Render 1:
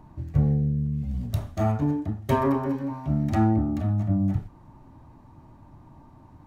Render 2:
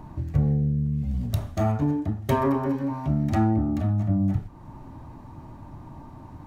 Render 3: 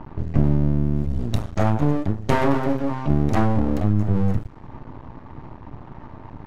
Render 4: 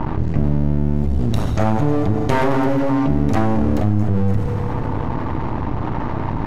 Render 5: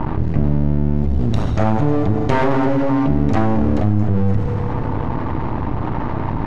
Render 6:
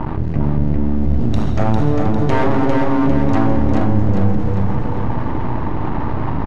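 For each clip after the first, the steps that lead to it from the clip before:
downward compressor 1.5 to 1, threshold −40 dBFS, peak gain reduction 8.5 dB; level +7.5 dB
half-wave rectification; low-pass that shuts in the quiet parts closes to 2,800 Hz, open at −23 dBFS; level +7.5 dB
on a send at −9 dB: convolution reverb RT60 2.9 s, pre-delay 9 ms; on the sum: envelope flattener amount 70%; level −1 dB
high-frequency loss of the air 73 metres; level +1 dB
repeating echo 401 ms, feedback 47%, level −4 dB; level −1 dB

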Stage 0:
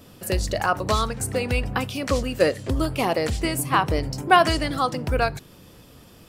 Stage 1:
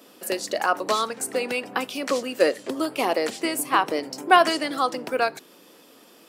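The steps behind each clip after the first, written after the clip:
high-pass filter 260 Hz 24 dB per octave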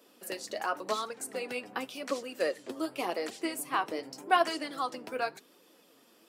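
flanger 0.89 Hz, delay 1.8 ms, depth 8 ms, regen +42%
level −6 dB

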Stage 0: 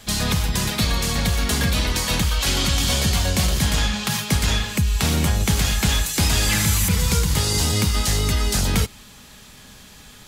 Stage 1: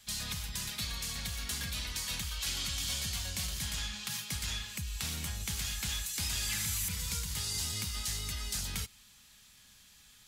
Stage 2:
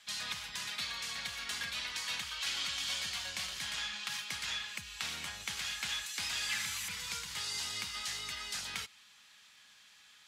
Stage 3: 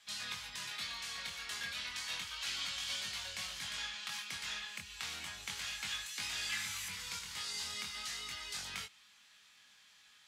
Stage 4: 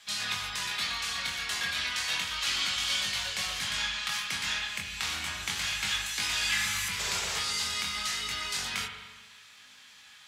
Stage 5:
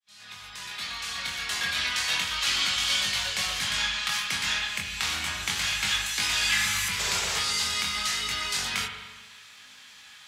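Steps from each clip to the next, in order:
guitar amp tone stack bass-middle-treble 5-5-5; level −5.5 dB
resonant band-pass 1,700 Hz, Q 0.6; level +4 dB
chorus effect 0.32 Hz, delay 19.5 ms, depth 4.5 ms
sound drawn into the spectrogram noise, 0:06.99–0:07.39, 360–8,100 Hz −45 dBFS; spring reverb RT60 1.3 s, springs 35/39 ms, chirp 65 ms, DRR 4 dB; level +9 dB
fade in at the beginning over 1.85 s; level +4 dB

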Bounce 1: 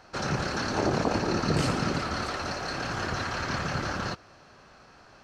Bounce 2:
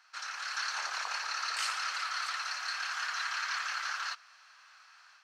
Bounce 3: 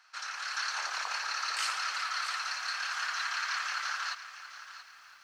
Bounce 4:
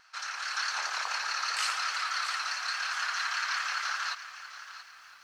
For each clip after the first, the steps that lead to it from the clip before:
high-pass filter 1,200 Hz 24 dB per octave; automatic gain control gain up to 5.5 dB; level −5.5 dB
feedback echo at a low word length 680 ms, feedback 35%, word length 10 bits, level −13 dB; level +1 dB
pitch vibrato 4.8 Hz 37 cents; level +2 dB

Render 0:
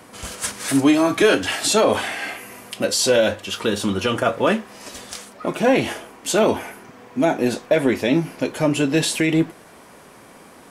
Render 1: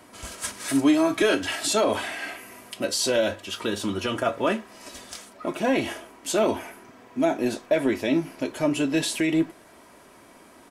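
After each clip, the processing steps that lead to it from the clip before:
comb filter 3.1 ms, depth 36%
level −6 dB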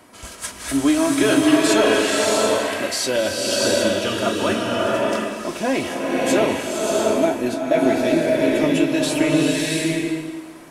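slow-attack reverb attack 680 ms, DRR −3.5 dB
level +1.5 dB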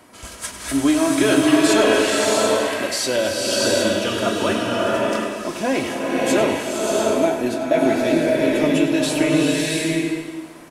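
slap from a distant wall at 17 metres, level −10 dB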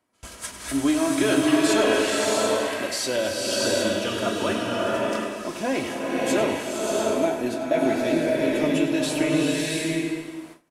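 noise gate with hold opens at −26 dBFS
level −4.5 dB

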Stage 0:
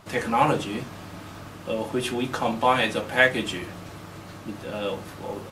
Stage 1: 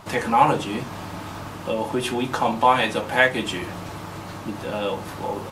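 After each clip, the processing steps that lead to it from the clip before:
in parallel at +0.5 dB: downward compressor, threshold −32 dBFS, peak gain reduction 17.5 dB
on the sum: parametric band 910 Hz +6 dB 0.47 octaves
level −1 dB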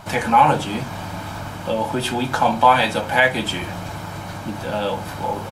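comb filter 1.3 ms, depth 41%
boost into a limiter +4 dB
level −1 dB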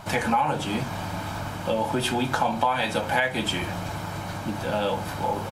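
downward compressor 6 to 1, threshold −18 dBFS, peak gain reduction 10.5 dB
level −1.5 dB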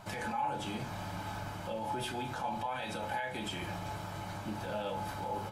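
brickwall limiter −20 dBFS, peak gain reduction 10 dB
tuned comb filter 430 Hz, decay 0.66 s, mix 70%
on a send at −6.5 dB: convolution reverb, pre-delay 3 ms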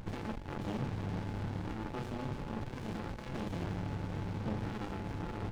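soft clipping −33.5 dBFS, distortion −14 dB
high-frequency loss of the air 160 metres
windowed peak hold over 65 samples
level +8 dB

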